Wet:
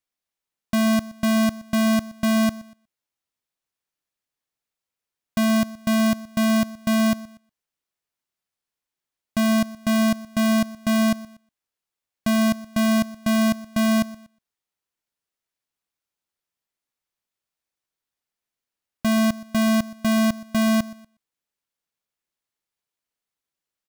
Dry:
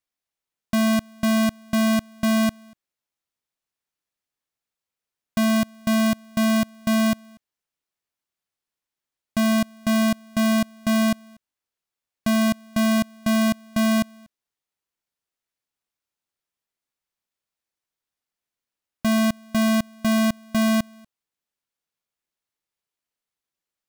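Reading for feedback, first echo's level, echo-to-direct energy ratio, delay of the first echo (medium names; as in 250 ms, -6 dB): no regular repeats, -19.5 dB, -19.5 dB, 122 ms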